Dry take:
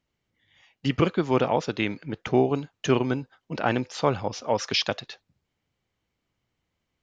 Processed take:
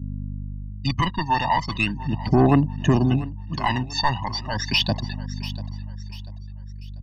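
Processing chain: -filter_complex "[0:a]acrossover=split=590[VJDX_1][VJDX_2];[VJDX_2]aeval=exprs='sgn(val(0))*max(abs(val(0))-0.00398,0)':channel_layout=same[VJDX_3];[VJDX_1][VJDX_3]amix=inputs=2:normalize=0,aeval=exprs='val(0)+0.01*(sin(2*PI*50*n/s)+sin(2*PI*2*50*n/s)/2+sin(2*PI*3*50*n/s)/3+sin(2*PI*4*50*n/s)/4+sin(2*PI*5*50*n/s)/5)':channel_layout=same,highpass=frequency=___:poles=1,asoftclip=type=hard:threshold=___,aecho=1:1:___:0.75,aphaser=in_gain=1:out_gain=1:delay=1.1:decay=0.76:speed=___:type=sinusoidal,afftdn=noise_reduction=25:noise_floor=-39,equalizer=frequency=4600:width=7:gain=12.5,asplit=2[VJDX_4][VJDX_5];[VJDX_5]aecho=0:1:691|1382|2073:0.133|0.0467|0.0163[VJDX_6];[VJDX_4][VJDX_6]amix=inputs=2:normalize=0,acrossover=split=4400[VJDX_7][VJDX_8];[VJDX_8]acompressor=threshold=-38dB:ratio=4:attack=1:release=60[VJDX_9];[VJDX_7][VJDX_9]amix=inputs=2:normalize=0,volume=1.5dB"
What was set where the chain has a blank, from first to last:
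130, -21.5dB, 1.1, 0.38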